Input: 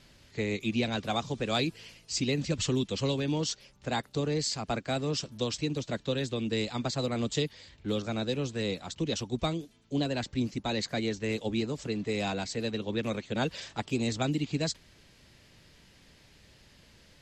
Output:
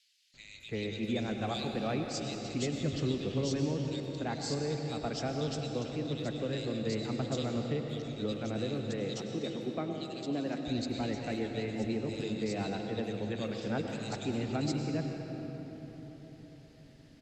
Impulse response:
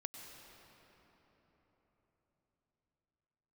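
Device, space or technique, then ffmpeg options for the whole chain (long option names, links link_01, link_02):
swimming-pool hall: -filter_complex "[0:a]asettb=1/sr,asplit=3[link_01][link_02][link_03];[link_01]atrim=end=8.514[link_04];[link_02]atrim=start=8.51:end=10.33,asetpts=PTS-STARTPTS,afade=type=in:duration=0.004:curve=qsin,afade=type=out:start_time=1.816:duration=0.004:curve=qsin,highpass=frequency=170:width=0.5412,highpass=frequency=170:width=1.3066[link_05];[link_03]atrim=start=10.326[link_06];[link_04][link_05]acrossfade=duration=0.004:curve1=hsin:curve2=qsin[link_07];[link_07][link_06]acrossfade=duration=0.004:curve1=qsin:curve2=hsin,equalizer=frequency=1000:width_type=o:width=0.35:gain=-5.5[link_08];[1:a]atrim=start_sample=2205[link_09];[link_08][link_09]afir=irnorm=-1:irlink=0,highshelf=frequency=5400:gain=-6,acrossover=split=2600[link_10][link_11];[link_10]adelay=340[link_12];[link_12][link_11]amix=inputs=2:normalize=0"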